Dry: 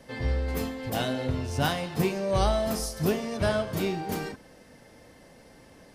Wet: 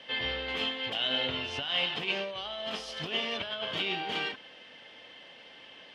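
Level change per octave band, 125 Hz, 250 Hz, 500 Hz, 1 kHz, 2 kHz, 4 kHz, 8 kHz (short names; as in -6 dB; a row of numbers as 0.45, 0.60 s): -17.5, -12.0, -9.0, -6.5, +3.0, +8.5, -14.5 dB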